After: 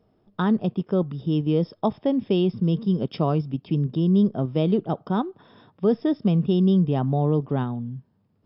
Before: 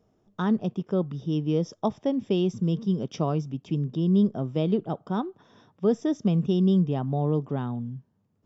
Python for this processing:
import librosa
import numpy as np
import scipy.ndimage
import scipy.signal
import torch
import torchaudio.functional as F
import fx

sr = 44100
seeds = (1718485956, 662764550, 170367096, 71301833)

p1 = fx.brickwall_lowpass(x, sr, high_hz=5400.0)
p2 = fx.level_steps(p1, sr, step_db=15)
y = p1 + (p2 * librosa.db_to_amplitude(0.0))